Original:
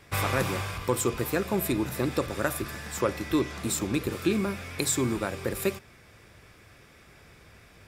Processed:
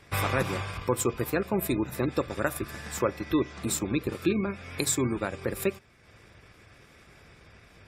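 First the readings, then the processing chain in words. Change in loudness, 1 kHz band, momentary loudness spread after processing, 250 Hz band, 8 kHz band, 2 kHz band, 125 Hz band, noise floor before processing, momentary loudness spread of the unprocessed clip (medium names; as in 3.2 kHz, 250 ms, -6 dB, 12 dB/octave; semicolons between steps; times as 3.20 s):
-0.5 dB, -0.5 dB, 5 LU, -0.5 dB, -1.0 dB, -1.0 dB, -0.5 dB, -55 dBFS, 5 LU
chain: spectral gate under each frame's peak -30 dB strong; transient shaper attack 0 dB, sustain -6 dB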